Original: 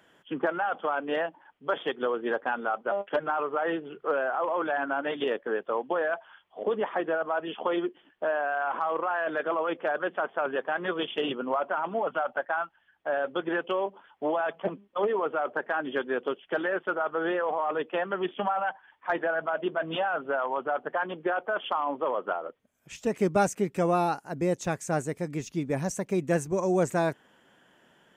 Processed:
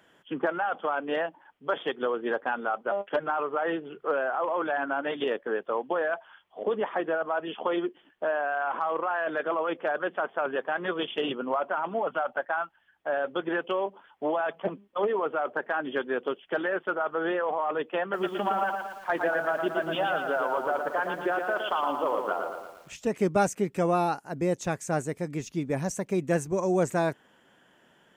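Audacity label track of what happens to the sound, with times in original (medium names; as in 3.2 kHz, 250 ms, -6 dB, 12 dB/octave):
18.020000	22.950000	bit-crushed delay 115 ms, feedback 55%, word length 9-bit, level -5 dB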